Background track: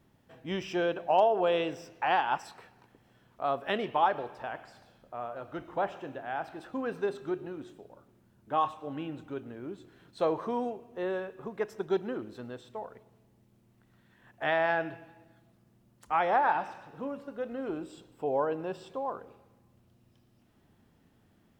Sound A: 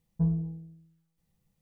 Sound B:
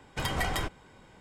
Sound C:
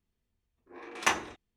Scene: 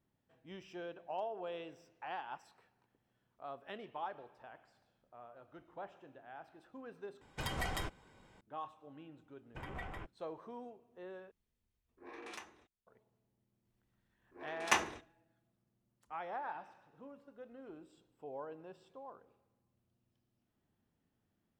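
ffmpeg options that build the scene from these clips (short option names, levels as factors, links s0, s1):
-filter_complex "[2:a]asplit=2[s0][s1];[3:a]asplit=2[s2][s3];[0:a]volume=0.15[s4];[s1]afwtdn=0.0158[s5];[s2]acompressor=threshold=0.0141:ratio=12:attack=1.2:release=651:knee=1:detection=rms[s6];[s3]aecho=1:1:72|144|216:0.0794|0.0302|0.0115[s7];[s4]asplit=3[s8][s9][s10];[s8]atrim=end=7.214[s11];[s0]atrim=end=1.2,asetpts=PTS-STARTPTS,volume=0.398[s12];[s9]atrim=start=8.406:end=11.314[s13];[s6]atrim=end=1.56,asetpts=PTS-STARTPTS,volume=0.596[s14];[s10]atrim=start=12.866[s15];[s5]atrim=end=1.2,asetpts=PTS-STARTPTS,volume=0.188,afade=t=in:d=0.004:c=hsin,afade=t=out:st=1.196:d=0.004:c=hsin,adelay=413658S[s16];[s7]atrim=end=1.56,asetpts=PTS-STARTPTS,volume=0.631,afade=t=in:d=0.004:c=hsin,afade=t=out:st=1.556:d=0.004:c=hsin,adelay=13650[s17];[s11][s12]acrossfade=d=0.004:c1=hsin:c2=hsin[s18];[s18][s13]acrossfade=d=0.004:c1=hsin:c2=hsin[s19];[s19][s14]acrossfade=d=0.004:c1=hsin:c2=hsin[s20];[s20][s15]acrossfade=d=0.004:c1=hsin:c2=hsin[s21];[s21][s16][s17]amix=inputs=3:normalize=0"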